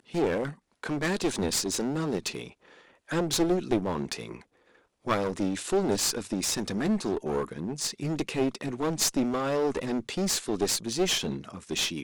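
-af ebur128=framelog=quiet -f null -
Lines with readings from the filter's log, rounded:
Integrated loudness:
  I:         -28.8 LUFS
  Threshold: -39.2 LUFS
Loudness range:
  LRA:         2.6 LU
  Threshold: -49.3 LUFS
  LRA low:   -30.6 LUFS
  LRA high:  -28.0 LUFS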